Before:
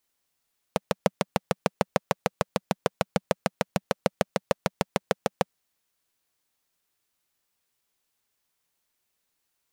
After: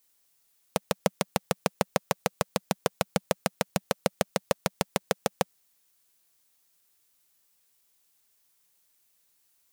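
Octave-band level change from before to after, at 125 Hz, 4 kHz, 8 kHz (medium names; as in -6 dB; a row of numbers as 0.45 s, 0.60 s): -1.5 dB, +2.0 dB, +5.0 dB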